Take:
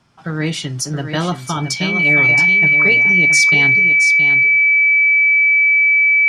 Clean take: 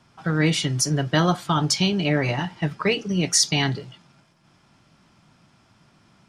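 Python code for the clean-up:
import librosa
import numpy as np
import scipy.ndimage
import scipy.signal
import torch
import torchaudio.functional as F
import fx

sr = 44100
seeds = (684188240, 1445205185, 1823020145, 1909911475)

y = fx.notch(x, sr, hz=2300.0, q=30.0)
y = fx.fix_echo_inverse(y, sr, delay_ms=672, level_db=-8.0)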